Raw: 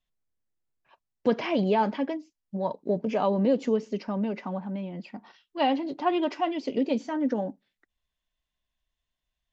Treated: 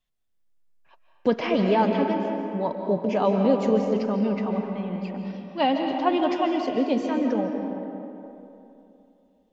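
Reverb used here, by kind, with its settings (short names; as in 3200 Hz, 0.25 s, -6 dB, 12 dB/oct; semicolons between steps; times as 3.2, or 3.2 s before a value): digital reverb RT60 3 s, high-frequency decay 0.5×, pre-delay 0.105 s, DRR 3.5 dB; gain +2 dB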